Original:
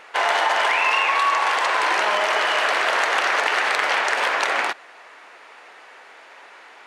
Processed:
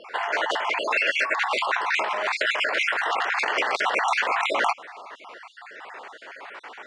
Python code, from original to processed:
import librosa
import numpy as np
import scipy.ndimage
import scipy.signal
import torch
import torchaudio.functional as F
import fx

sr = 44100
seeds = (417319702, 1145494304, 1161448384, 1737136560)

y = fx.spec_dropout(x, sr, seeds[0], share_pct=44)
y = scipy.signal.sosfilt(scipy.signal.butter(4, 9400.0, 'lowpass', fs=sr, output='sos'), y)
y = fx.high_shelf(y, sr, hz=3500.0, db=-8.5)
y = fx.over_compress(y, sr, threshold_db=-28.0, ratio=-1.0)
y = y * librosa.db_to_amplitude(3.5)